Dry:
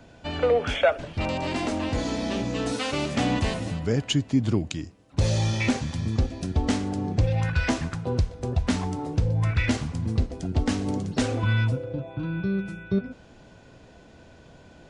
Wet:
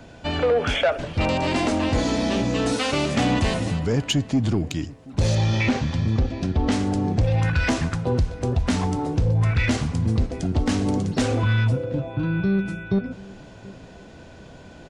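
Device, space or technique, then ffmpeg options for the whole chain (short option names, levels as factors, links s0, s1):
soft clipper into limiter: -filter_complex "[0:a]asoftclip=type=tanh:threshold=0.158,alimiter=limit=0.1:level=0:latency=1:release=59,asettb=1/sr,asplit=3[s0][s1][s2];[s0]atrim=end=5.354[s3];[s1]atrim=start=5.35:end=6.72,asetpts=PTS-STARTPTS,afade=t=in:d=0.004:c=qsin,afade=t=out:st=1.366:d=0.004:c=qsin,lowpass=4500[s4];[s2]atrim=start=6.716[s5];[s3][s4]acrossfade=d=0.004:c1=hsin:c2=qsin[s6];[s6][s5]acrossfade=d=0.004:c1=qsin:c2=hsin,asplit=2[s7][s8];[s8]adelay=730,lowpass=f=1600:p=1,volume=0.0944,asplit=2[s9][s10];[s10]adelay=730,lowpass=f=1600:p=1,volume=0.37,asplit=2[s11][s12];[s12]adelay=730,lowpass=f=1600:p=1,volume=0.37[s13];[s7][s9][s11][s13]amix=inputs=4:normalize=0,volume=2"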